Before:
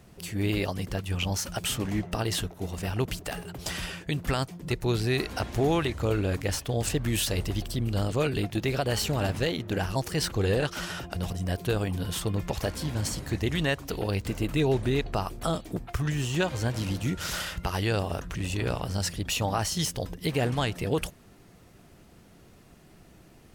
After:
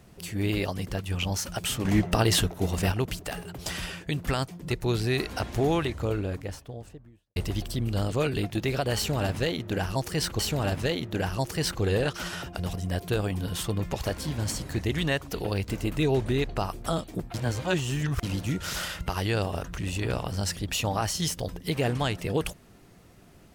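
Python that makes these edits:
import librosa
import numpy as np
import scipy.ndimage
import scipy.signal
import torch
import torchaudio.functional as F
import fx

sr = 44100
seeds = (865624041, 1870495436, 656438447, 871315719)

y = fx.studio_fade_out(x, sr, start_s=5.61, length_s=1.75)
y = fx.edit(y, sr, fx.clip_gain(start_s=1.85, length_s=1.07, db=6.5),
    fx.repeat(start_s=8.96, length_s=1.43, count=2),
    fx.reverse_span(start_s=15.91, length_s=0.89), tone=tone)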